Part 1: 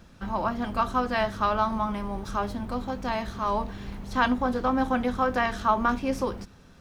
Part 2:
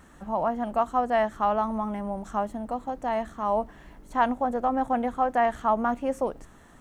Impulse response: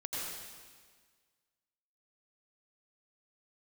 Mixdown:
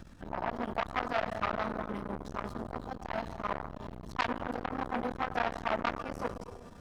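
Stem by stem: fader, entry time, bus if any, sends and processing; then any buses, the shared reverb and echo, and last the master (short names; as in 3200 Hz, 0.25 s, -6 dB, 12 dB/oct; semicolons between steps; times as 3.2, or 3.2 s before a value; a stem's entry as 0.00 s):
+2.5 dB, 0.00 s, send -19.5 dB, low shelf 250 Hz +4.5 dB; auto duck -10 dB, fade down 0.25 s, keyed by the second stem
-9.0 dB, 0.00 s, send -7.5 dB, dry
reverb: on, RT60 1.6 s, pre-delay 79 ms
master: core saturation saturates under 2000 Hz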